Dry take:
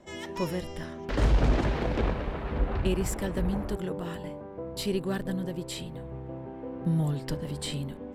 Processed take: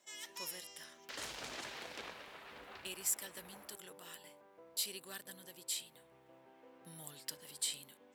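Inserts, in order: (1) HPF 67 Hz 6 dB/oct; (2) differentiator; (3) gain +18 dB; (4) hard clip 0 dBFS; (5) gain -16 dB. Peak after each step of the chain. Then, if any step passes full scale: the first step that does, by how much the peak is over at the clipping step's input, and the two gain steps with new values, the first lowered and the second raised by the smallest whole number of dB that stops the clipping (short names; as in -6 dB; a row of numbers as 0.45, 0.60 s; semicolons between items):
-14.5, -23.5, -5.5, -5.5, -21.5 dBFS; no overload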